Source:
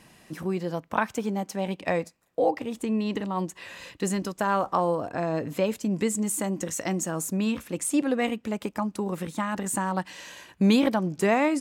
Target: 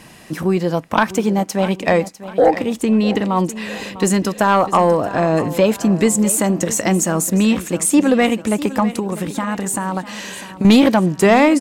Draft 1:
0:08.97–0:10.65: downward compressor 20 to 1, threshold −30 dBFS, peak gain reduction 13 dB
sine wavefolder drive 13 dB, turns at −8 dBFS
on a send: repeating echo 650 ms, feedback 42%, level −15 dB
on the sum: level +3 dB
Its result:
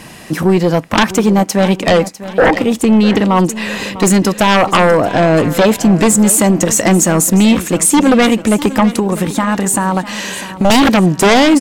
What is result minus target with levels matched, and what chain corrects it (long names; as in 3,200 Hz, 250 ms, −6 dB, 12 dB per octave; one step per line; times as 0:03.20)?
sine wavefolder: distortion +15 dB
0:08.97–0:10.65: downward compressor 20 to 1, threshold −30 dBFS, peak gain reduction 13 dB
sine wavefolder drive 5 dB, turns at −8 dBFS
on a send: repeating echo 650 ms, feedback 42%, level −15 dB
on the sum: level +3 dB